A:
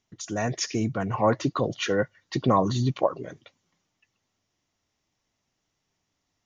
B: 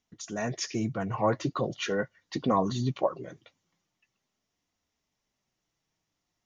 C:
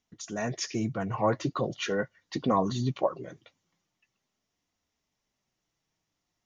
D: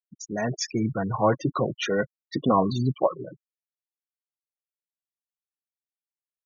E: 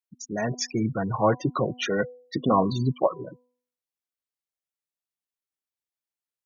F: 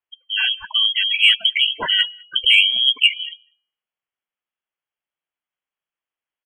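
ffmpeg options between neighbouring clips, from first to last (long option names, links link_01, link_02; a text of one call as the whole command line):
ffmpeg -i in.wav -af "flanger=delay=3.9:depth=2.5:regen=-53:speed=0.42:shape=triangular" out.wav
ffmpeg -i in.wav -af anull out.wav
ffmpeg -i in.wav -af "afftfilt=real='re*gte(hypot(re,im),0.0251)':imag='im*gte(hypot(re,im),0.0251)':win_size=1024:overlap=0.75,volume=4.5dB" out.wav
ffmpeg -i in.wav -af "bandreject=frequency=247.8:width_type=h:width=4,bandreject=frequency=495.6:width_type=h:width=4,bandreject=frequency=743.4:width_type=h:width=4,bandreject=frequency=991.2:width_type=h:width=4" out.wav
ffmpeg -i in.wav -filter_complex "[0:a]lowpass=frequency=2900:width_type=q:width=0.5098,lowpass=frequency=2900:width_type=q:width=0.6013,lowpass=frequency=2900:width_type=q:width=0.9,lowpass=frequency=2900:width_type=q:width=2.563,afreqshift=-3400,acontrast=30,asplit=2[link_01][link_02];[link_02]adelay=198.3,volume=-29dB,highshelf=frequency=4000:gain=-4.46[link_03];[link_01][link_03]amix=inputs=2:normalize=0,volume=2.5dB" out.wav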